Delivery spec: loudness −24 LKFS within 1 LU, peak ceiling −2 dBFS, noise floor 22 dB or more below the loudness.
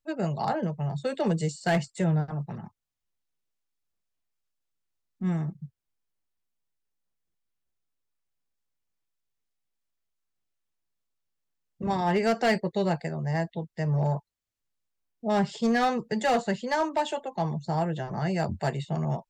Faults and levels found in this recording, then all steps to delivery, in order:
share of clipped samples 0.4%; peaks flattened at −18.5 dBFS; integrated loudness −28.5 LKFS; sample peak −18.5 dBFS; target loudness −24.0 LKFS
→ clipped peaks rebuilt −18.5 dBFS
level +4.5 dB

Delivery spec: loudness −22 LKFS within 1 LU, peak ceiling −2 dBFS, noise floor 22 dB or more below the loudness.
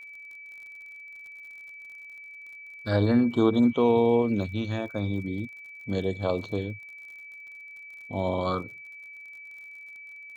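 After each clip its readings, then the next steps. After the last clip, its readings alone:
crackle rate 45 per second; interfering tone 2,300 Hz; level of the tone −42 dBFS; integrated loudness −26.5 LKFS; sample peak −10.0 dBFS; target loudness −22.0 LKFS
→ click removal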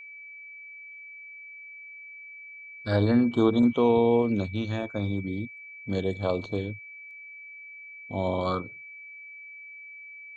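crackle rate 0.096 per second; interfering tone 2,300 Hz; level of the tone −42 dBFS
→ notch filter 2,300 Hz, Q 30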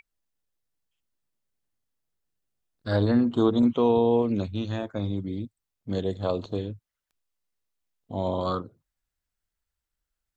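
interfering tone none found; integrated loudness −26.0 LKFS; sample peak −10.5 dBFS; target loudness −22.0 LKFS
→ level +4 dB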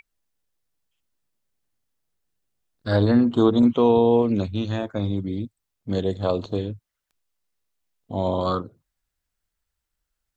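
integrated loudness −22.0 LKFS; sample peak −6.5 dBFS; background noise floor −82 dBFS

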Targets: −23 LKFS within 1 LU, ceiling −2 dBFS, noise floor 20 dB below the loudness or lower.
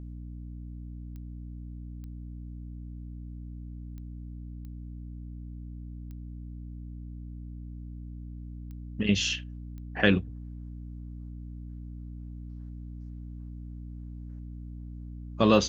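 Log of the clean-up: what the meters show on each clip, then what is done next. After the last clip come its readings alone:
number of clicks 8; mains hum 60 Hz; hum harmonics up to 300 Hz; level of the hum −38 dBFS; integrated loudness −36.0 LKFS; sample peak −6.5 dBFS; target loudness −23.0 LKFS
→ click removal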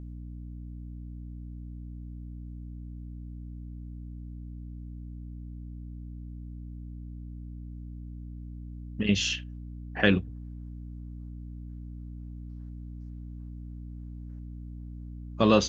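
number of clicks 0; mains hum 60 Hz; hum harmonics up to 300 Hz; level of the hum −38 dBFS
→ mains-hum notches 60/120/180/240/300 Hz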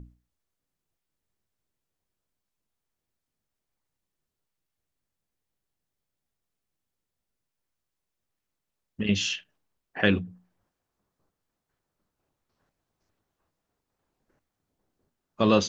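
mains hum none found; integrated loudness −27.0 LKFS; sample peak −6.5 dBFS; target loudness −23.0 LKFS
→ level +4 dB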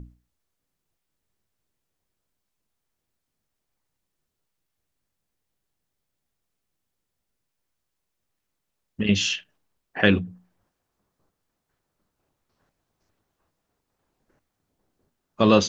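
integrated loudness −23.0 LKFS; sample peak −2.5 dBFS; background noise floor −81 dBFS

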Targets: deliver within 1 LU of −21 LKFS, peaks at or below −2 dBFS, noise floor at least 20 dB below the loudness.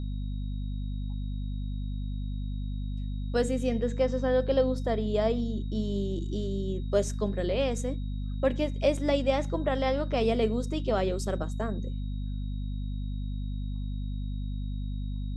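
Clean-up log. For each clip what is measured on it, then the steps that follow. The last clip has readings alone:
mains hum 50 Hz; hum harmonics up to 250 Hz; level of the hum −30 dBFS; interfering tone 3,800 Hz; level of the tone −57 dBFS; integrated loudness −30.5 LKFS; sample peak −12.0 dBFS; target loudness −21.0 LKFS
→ mains-hum notches 50/100/150/200/250 Hz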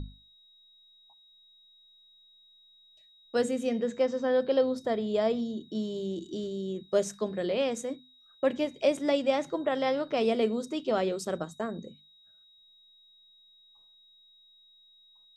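mains hum none found; interfering tone 3,800 Hz; level of the tone −57 dBFS
→ notch filter 3,800 Hz, Q 30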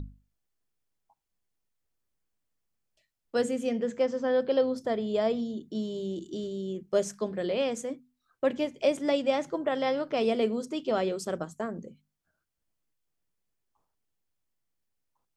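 interfering tone none found; integrated loudness −30.0 LKFS; sample peak −13.5 dBFS; target loudness −21.0 LKFS
→ level +9 dB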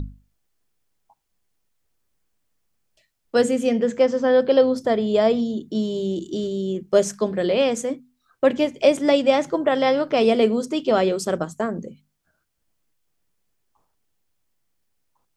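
integrated loudness −21.0 LKFS; sample peak −4.5 dBFS; background noise floor −74 dBFS

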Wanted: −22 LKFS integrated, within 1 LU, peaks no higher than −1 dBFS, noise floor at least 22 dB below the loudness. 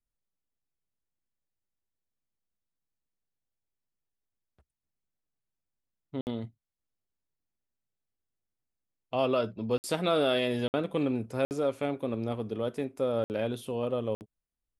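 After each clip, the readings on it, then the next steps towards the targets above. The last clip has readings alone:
number of dropouts 6; longest dropout 59 ms; integrated loudness −31.0 LKFS; sample peak −14.5 dBFS; target loudness −22.0 LKFS
→ repair the gap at 0:06.21/0:09.78/0:10.68/0:11.45/0:13.24/0:14.15, 59 ms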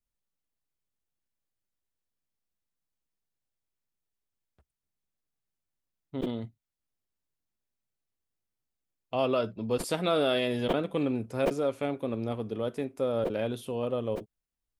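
number of dropouts 0; integrated loudness −30.5 LKFS; sample peak −14.5 dBFS; target loudness −22.0 LKFS
→ level +8.5 dB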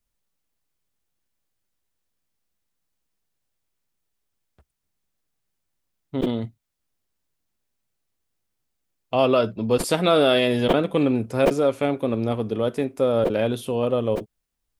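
integrated loudness −22.0 LKFS; sample peak −6.0 dBFS; background noise floor −79 dBFS

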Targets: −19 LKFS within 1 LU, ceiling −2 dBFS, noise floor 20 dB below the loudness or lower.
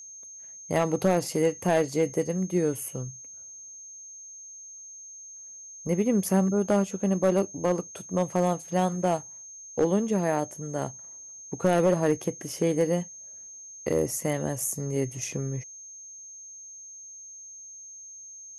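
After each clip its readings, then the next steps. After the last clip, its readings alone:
share of clipped samples 0.4%; peaks flattened at −15.0 dBFS; interfering tone 6,400 Hz; level of the tone −42 dBFS; integrated loudness −27.0 LKFS; sample peak −15.0 dBFS; target loudness −19.0 LKFS
→ clipped peaks rebuilt −15 dBFS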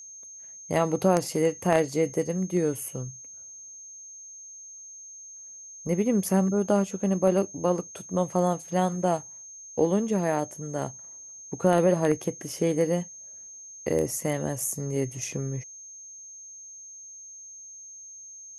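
share of clipped samples 0.0%; interfering tone 6,400 Hz; level of the tone −42 dBFS
→ notch filter 6,400 Hz, Q 30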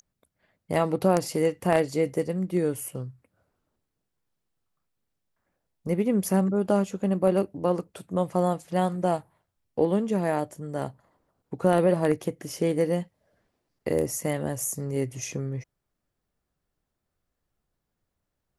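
interfering tone none found; integrated loudness −26.5 LKFS; sample peak −6.0 dBFS; target loudness −19.0 LKFS
→ level +7.5 dB
brickwall limiter −2 dBFS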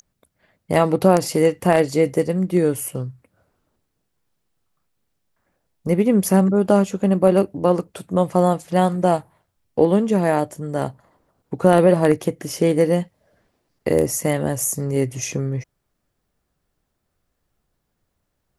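integrated loudness −19.0 LKFS; sample peak −2.0 dBFS; background noise floor −74 dBFS

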